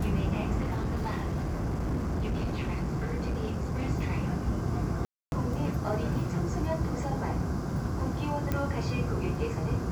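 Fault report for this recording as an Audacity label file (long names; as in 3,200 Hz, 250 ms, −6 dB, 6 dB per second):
0.600000	3.900000	clipping −26.5 dBFS
5.050000	5.320000	drop-out 271 ms
8.520000	8.520000	click −16 dBFS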